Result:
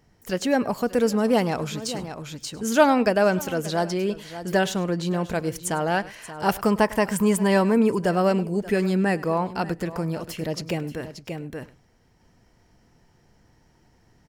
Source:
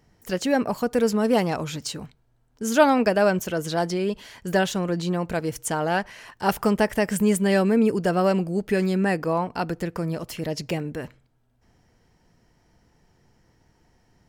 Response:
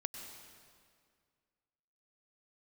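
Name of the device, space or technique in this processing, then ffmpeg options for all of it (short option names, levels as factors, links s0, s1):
ducked delay: -filter_complex "[0:a]asettb=1/sr,asplit=3[s0][s1][s2];[s0]atrim=end=6.714[s3];[s1]atrim=start=6.71:end=7.98,asetpts=PTS-STARTPTS,afade=t=in:d=0.004:c=qsin,afade=t=out:st=1.266:d=0.004:c=qsin,equalizer=f=1000:w=5.5:g=13.5[s4];[s2]atrim=start=7.976[s5];[s3][s4]acrossfade=d=0.004:c1=hsin:c2=qsin[s6];[s6][s5]acrossfade=d=0.004:c1=qsin:c2=hsin,asplit=3[s7][s8][s9];[s8]adelay=581,volume=0.75[s10];[s9]apad=whole_len=655506[s11];[s10][s11]sidechaincompress=threshold=0.0141:ratio=8:attack=21:release=617[s12];[s7][s12]amix=inputs=2:normalize=0,aecho=1:1:102:0.1"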